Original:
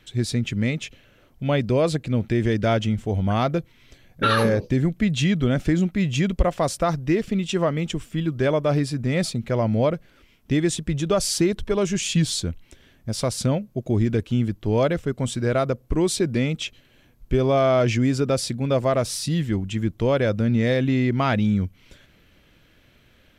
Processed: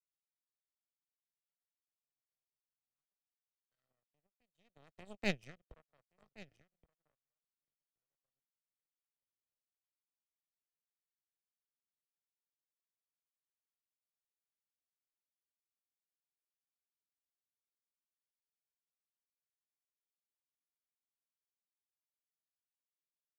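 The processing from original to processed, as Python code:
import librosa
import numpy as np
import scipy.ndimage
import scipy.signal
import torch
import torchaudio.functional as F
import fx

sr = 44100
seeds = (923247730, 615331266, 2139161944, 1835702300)

p1 = np.where(x < 0.0, 10.0 ** (-3.0 / 20.0) * x, x)
p2 = fx.doppler_pass(p1, sr, speed_mps=42, closest_m=2.9, pass_at_s=5.3)
p3 = p2 + fx.echo_single(p2, sr, ms=1123, db=-9.5, dry=0)
p4 = fx.power_curve(p3, sr, exponent=3.0)
p5 = p4 + 0.32 * np.pad(p4, (int(1.6 * sr / 1000.0), 0))[:len(p4)]
p6 = fx.band_squash(p5, sr, depth_pct=40)
y = p6 * librosa.db_to_amplitude(1.5)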